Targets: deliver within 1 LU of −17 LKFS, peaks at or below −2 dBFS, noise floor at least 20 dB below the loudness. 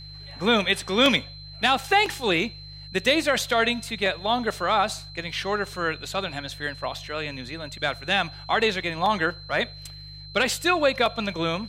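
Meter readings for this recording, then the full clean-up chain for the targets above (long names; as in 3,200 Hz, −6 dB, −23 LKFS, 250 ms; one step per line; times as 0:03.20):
mains hum 50 Hz; hum harmonics up to 150 Hz; level of the hum −42 dBFS; interfering tone 4,100 Hz; level of the tone −42 dBFS; integrated loudness −24.5 LKFS; sample peak −8.0 dBFS; target loudness −17.0 LKFS
→ hum removal 50 Hz, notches 3
notch filter 4,100 Hz, Q 30
level +7.5 dB
brickwall limiter −2 dBFS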